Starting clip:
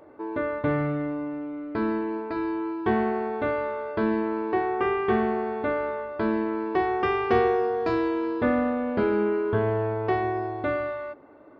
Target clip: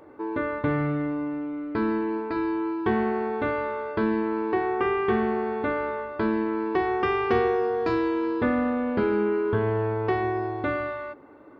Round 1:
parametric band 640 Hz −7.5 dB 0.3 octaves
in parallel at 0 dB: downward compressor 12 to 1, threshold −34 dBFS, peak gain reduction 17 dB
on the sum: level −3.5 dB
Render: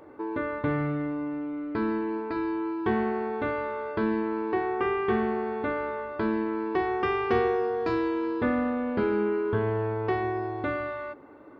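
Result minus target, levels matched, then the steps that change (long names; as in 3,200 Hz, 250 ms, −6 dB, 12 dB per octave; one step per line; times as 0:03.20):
downward compressor: peak gain reduction +8.5 dB
change: downward compressor 12 to 1, threshold −25 dBFS, peak gain reduction 8.5 dB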